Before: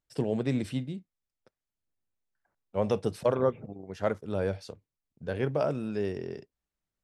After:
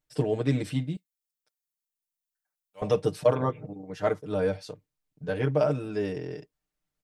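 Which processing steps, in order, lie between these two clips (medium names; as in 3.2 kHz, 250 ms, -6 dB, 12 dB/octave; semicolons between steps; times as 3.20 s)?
0.96–2.82 s: pre-emphasis filter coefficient 0.97; comb 6.6 ms, depth 99%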